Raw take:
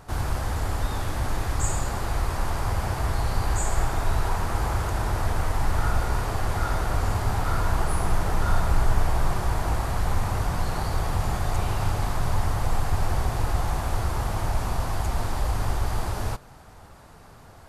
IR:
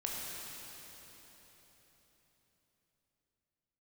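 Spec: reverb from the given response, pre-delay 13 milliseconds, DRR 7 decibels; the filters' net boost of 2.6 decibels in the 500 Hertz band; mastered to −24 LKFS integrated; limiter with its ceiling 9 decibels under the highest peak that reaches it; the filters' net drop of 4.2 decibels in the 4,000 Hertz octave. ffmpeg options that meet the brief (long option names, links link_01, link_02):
-filter_complex "[0:a]equalizer=frequency=500:width_type=o:gain=3.5,equalizer=frequency=4000:width_type=o:gain=-5.5,alimiter=limit=-17dB:level=0:latency=1,asplit=2[link_01][link_02];[1:a]atrim=start_sample=2205,adelay=13[link_03];[link_02][link_03]afir=irnorm=-1:irlink=0,volume=-10dB[link_04];[link_01][link_04]amix=inputs=2:normalize=0,volume=4.5dB"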